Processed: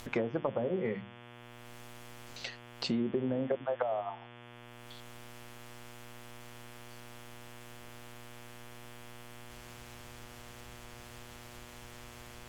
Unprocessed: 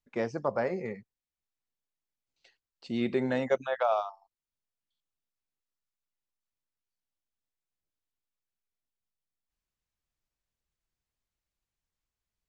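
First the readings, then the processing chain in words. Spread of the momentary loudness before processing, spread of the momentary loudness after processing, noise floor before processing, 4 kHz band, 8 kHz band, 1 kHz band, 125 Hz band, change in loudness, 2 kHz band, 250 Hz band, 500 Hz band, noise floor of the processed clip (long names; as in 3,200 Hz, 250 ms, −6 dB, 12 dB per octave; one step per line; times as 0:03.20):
11 LU, 17 LU, below −85 dBFS, +5.5 dB, can't be measured, −5.5 dB, +1.5 dB, −9.0 dB, −3.0 dB, −0.5 dB, −3.0 dB, −52 dBFS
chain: upward compression, threshold −38 dBFS
mains-hum notches 50/100/150/200/250/300/350 Hz
treble cut that deepens with the level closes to 460 Hz, closed at −25.5 dBFS
downward compressor 6 to 1, threshold −38 dBFS, peak gain reduction 12.5 dB
hum with harmonics 120 Hz, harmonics 29, −61 dBFS −3 dB per octave
level +9 dB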